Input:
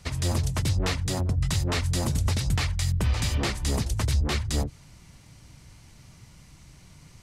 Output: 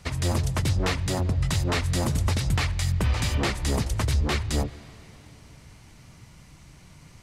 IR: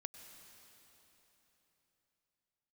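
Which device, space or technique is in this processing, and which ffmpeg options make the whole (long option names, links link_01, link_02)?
filtered reverb send: -filter_complex "[0:a]asplit=2[link_01][link_02];[link_02]highpass=frequency=230:poles=1,lowpass=3600[link_03];[1:a]atrim=start_sample=2205[link_04];[link_03][link_04]afir=irnorm=-1:irlink=0,volume=-2dB[link_05];[link_01][link_05]amix=inputs=2:normalize=0"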